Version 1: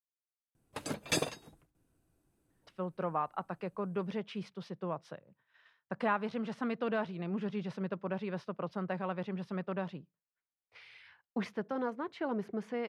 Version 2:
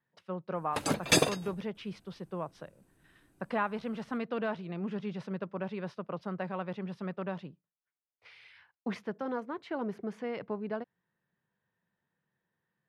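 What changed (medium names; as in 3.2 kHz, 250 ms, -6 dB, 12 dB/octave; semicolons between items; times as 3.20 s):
speech: entry -2.50 s; background +7.5 dB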